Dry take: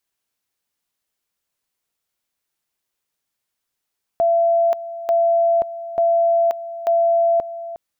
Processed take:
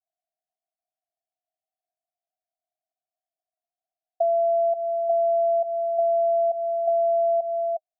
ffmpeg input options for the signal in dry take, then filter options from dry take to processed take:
-f lavfi -i "aevalsrc='pow(10,(-13-14.5*gte(mod(t,0.89),0.53))/20)*sin(2*PI*675*t)':d=3.56:s=44100"
-filter_complex "[0:a]asplit=2[a][b];[b]alimiter=level_in=0.5dB:limit=-24dB:level=0:latency=1,volume=-0.5dB,volume=-0.5dB[c];[a][c]amix=inputs=2:normalize=0,acompressor=threshold=-20dB:ratio=6,asuperpass=centerf=690:order=8:qfactor=5.1"

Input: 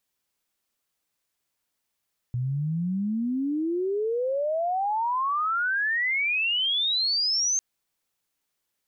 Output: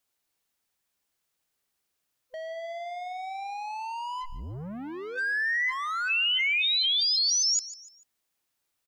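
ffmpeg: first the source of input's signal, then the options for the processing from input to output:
-f lavfi -i "aevalsrc='pow(10,(-24.5+3*t/5.25)/20)*sin(2*PI*120*5.25/log(6400/120)*(exp(log(6400/120)*t/5.25)-1))':d=5.25:s=44100"
-filter_complex "[0:a]afftfilt=real='real(if(lt(b,1008),b+24*(1-2*mod(floor(b/24),2)),b),0)':imag='imag(if(lt(b,1008),b+24*(1-2*mod(floor(b/24),2)),b),0)':win_size=2048:overlap=0.75,acrossover=split=1600[a][b];[a]asoftclip=type=tanh:threshold=-36.5dB[c];[c][b]amix=inputs=2:normalize=0,aecho=1:1:147|294|441:0.158|0.0618|0.0241"

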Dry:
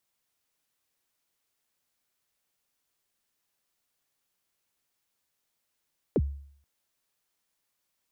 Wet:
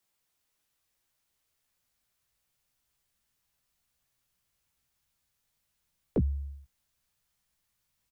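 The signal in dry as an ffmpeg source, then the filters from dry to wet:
-f lavfi -i "aevalsrc='0.119*pow(10,-3*t/0.6)*sin(2*PI*(540*0.045/log(70/540)*(exp(log(70/540)*min(t,0.045)/0.045)-1)+70*max(t-0.045,0)))':d=0.48:s=44100"
-filter_complex "[0:a]acrossover=split=190|300|750[a][b][c][d];[a]acompressor=threshold=-41dB:ratio=6[e];[e][b][c][d]amix=inputs=4:normalize=0,asplit=2[f][g];[g]adelay=16,volume=-7.5dB[h];[f][h]amix=inputs=2:normalize=0,asubboost=boost=5:cutoff=150"

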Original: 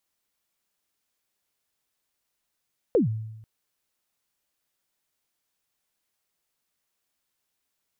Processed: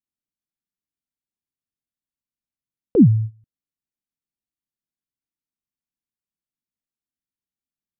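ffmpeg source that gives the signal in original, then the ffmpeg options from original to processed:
-f lavfi -i "aevalsrc='0.178*pow(10,-3*t/0.97)*sin(2*PI*(540*0.129/log(110/540)*(exp(log(110/540)*min(t,0.129)/0.129)-1)+110*max(t-0.129,0)))':d=0.49:s=44100"
-af "agate=range=-20dB:threshold=-36dB:ratio=16:detection=peak,lowshelf=f=380:t=q:w=1.5:g=12"

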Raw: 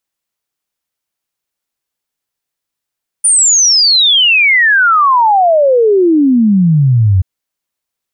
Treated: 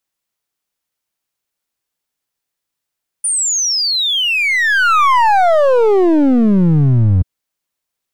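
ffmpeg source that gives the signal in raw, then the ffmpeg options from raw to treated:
-f lavfi -i "aevalsrc='0.531*clip(min(t,3.98-t)/0.01,0,1)*sin(2*PI*9500*3.98/log(89/9500)*(exp(log(89/9500)*t/3.98)-1))':d=3.98:s=44100"
-filter_complex "[0:a]acrossover=split=120|1300[a][b][c];[c]alimiter=limit=-13dB:level=0:latency=1[d];[a][b][d]amix=inputs=3:normalize=0,aeval=exprs='clip(val(0),-1,0.211)':c=same"

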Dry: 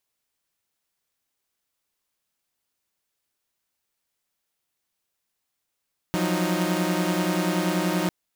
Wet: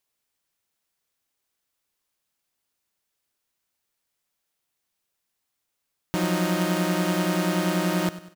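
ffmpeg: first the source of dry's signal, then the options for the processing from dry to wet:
-f lavfi -i "aevalsrc='0.0631*((2*mod(174.61*t,1)-1)+(2*mod(185*t,1)-1)+(2*mod(311.13*t,1)-1))':d=1.95:s=44100"
-af "aecho=1:1:98|196|294|392:0.168|0.0739|0.0325|0.0143"

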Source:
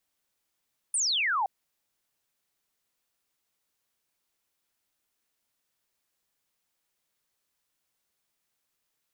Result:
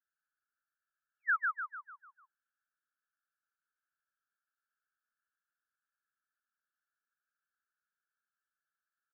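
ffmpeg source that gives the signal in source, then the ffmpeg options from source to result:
-f lavfi -i "aevalsrc='0.0631*clip(t/0.002,0,1)*clip((0.52-t)/0.002,0,1)*sin(2*PI*9700*0.52/log(740/9700)*(exp(log(740/9700)*t/0.52)-1))':d=0.52:s=44100"
-filter_complex "[0:a]asuperpass=centerf=1500:order=12:qfactor=3.2,asplit=2[a][b];[b]asplit=6[c][d][e][f][g][h];[c]adelay=149,afreqshift=-39,volume=-3dB[i];[d]adelay=298,afreqshift=-78,volume=-9.6dB[j];[e]adelay=447,afreqshift=-117,volume=-16.1dB[k];[f]adelay=596,afreqshift=-156,volume=-22.7dB[l];[g]adelay=745,afreqshift=-195,volume=-29.2dB[m];[h]adelay=894,afreqshift=-234,volume=-35.8dB[n];[i][j][k][l][m][n]amix=inputs=6:normalize=0[o];[a][o]amix=inputs=2:normalize=0"

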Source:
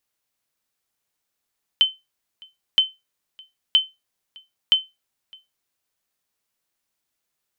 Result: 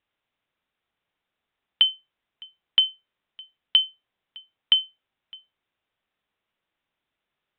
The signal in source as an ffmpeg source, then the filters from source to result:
-f lavfi -i "aevalsrc='0.422*(sin(2*PI*3070*mod(t,0.97))*exp(-6.91*mod(t,0.97)/0.21)+0.0398*sin(2*PI*3070*max(mod(t,0.97)-0.61,0))*exp(-6.91*max(mod(t,0.97)-0.61,0)/0.21))':d=3.88:s=44100"
-filter_complex "[0:a]asplit=2[a][b];[b]aeval=exprs='0.0631*(abs(mod(val(0)/0.0631+3,4)-2)-1)':c=same,volume=-7.5dB[c];[a][c]amix=inputs=2:normalize=0,aresample=8000,aresample=44100"

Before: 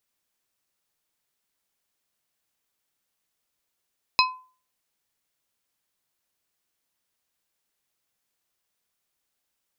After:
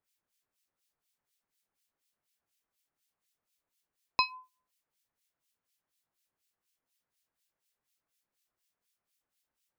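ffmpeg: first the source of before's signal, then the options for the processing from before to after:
-f lavfi -i "aevalsrc='0.168*pow(10,-3*t/0.39)*sin(2*PI*1020*t)+0.158*pow(10,-3*t/0.205)*sin(2*PI*2550*t)+0.15*pow(10,-3*t/0.148)*sin(2*PI*4080*t)+0.141*pow(10,-3*t/0.126)*sin(2*PI*5100*t)':d=0.89:s=44100"
-filter_complex "[0:a]acrossover=split=1900[a][b];[a]aeval=exprs='val(0)*(1-1/2+1/2*cos(2*PI*4.1*n/s))':c=same[c];[b]aeval=exprs='val(0)*(1-1/2-1/2*cos(2*PI*4.1*n/s))':c=same[d];[c][d]amix=inputs=2:normalize=0"

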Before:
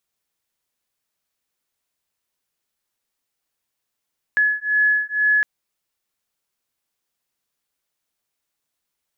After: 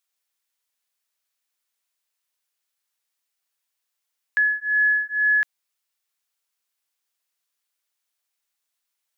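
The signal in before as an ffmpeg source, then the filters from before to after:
-f lavfi -i "aevalsrc='0.112*(sin(2*PI*1700*t)+sin(2*PI*1702.1*t))':d=1.06:s=44100"
-af "highpass=f=1.2k:p=1"

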